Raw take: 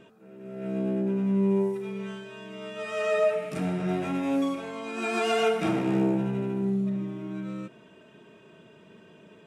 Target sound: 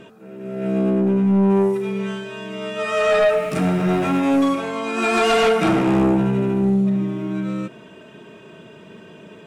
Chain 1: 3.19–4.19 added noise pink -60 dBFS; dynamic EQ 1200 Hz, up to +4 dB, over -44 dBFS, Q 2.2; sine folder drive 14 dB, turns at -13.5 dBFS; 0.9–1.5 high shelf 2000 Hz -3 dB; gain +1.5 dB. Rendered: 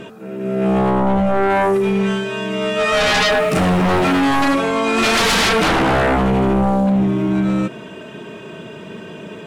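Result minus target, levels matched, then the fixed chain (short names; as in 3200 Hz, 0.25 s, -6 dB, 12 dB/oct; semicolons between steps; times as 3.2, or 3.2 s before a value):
sine folder: distortion +19 dB
3.19–4.19 added noise pink -60 dBFS; dynamic EQ 1200 Hz, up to +4 dB, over -44 dBFS, Q 2.2; sine folder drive 5 dB, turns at -13.5 dBFS; 0.9–1.5 high shelf 2000 Hz -3 dB; gain +1.5 dB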